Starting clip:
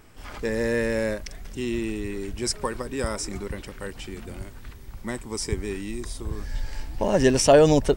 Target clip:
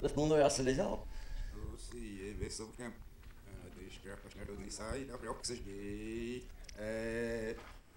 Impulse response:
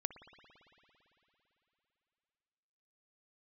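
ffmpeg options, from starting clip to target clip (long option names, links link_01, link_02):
-filter_complex "[0:a]areverse,acompressor=mode=upward:threshold=-36dB:ratio=2.5[link_01];[1:a]atrim=start_sample=2205,afade=type=out:start_time=0.25:duration=0.01,atrim=end_sample=11466,asetrate=83790,aresample=44100[link_02];[link_01][link_02]afir=irnorm=-1:irlink=0,volume=-7dB"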